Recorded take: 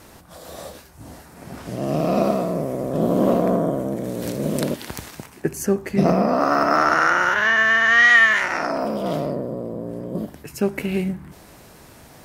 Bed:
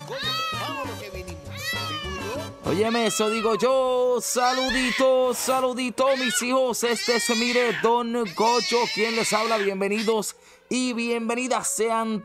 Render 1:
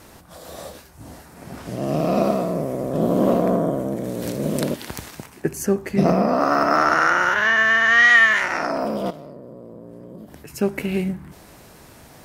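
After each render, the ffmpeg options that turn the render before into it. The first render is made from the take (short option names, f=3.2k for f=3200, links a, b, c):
-filter_complex "[0:a]asettb=1/sr,asplit=3[a][b][c];[a]atrim=end=9.104[d];[b]atrim=start=9.1:end=10.51,asetpts=PTS-STARTPTS,afade=t=in:d=0.004:c=qsin,afade=t=out:st=1.406:d=0.004:c=qsin,acompressor=threshold=-34dB:ratio=12:attack=3.2:release=140:knee=1:detection=peak[e];[c]atrim=start=10.506[f];[d][e]acrossfade=d=0.004:c1=hsin:c2=qsin[g];[g][f]acrossfade=d=0.004:c1=qsin:c2=hsin"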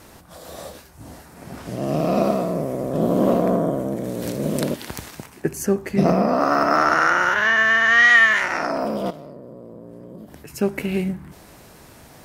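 -af anull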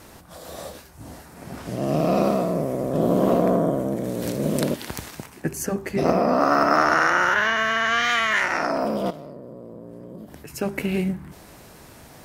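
-af "afftfilt=real='re*lt(hypot(re,im),1)':imag='im*lt(hypot(re,im),1)':win_size=1024:overlap=0.75"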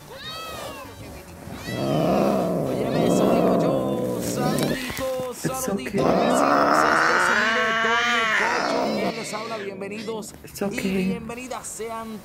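-filter_complex "[1:a]volume=-8dB[a];[0:a][a]amix=inputs=2:normalize=0"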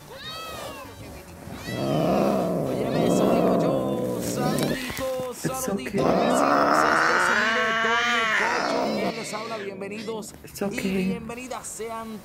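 -af "volume=-1.5dB"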